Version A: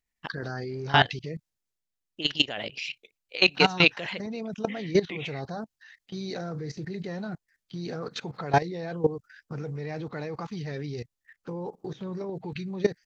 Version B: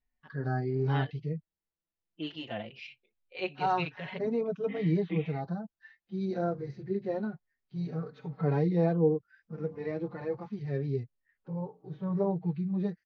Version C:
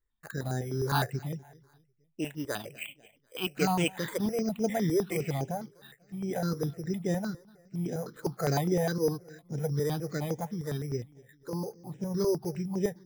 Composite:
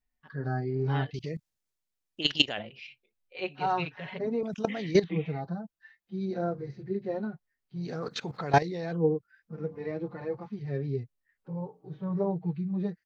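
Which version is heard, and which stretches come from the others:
B
1.14–2.59 s: from A
4.43–5.04 s: from A
7.87–8.97 s: from A, crossfade 0.24 s
not used: C

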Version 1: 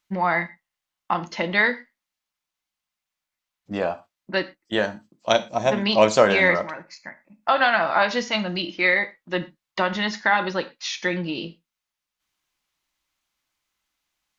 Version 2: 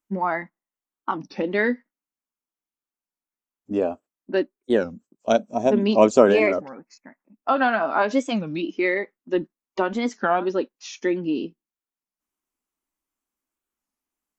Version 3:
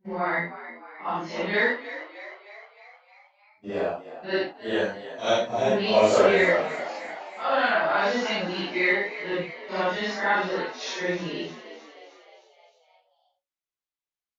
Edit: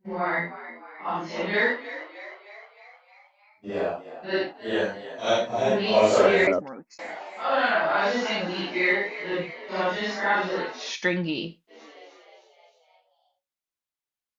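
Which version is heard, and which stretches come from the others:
3
6.47–6.99 s: from 2
10.89–11.75 s: from 1, crossfade 0.16 s

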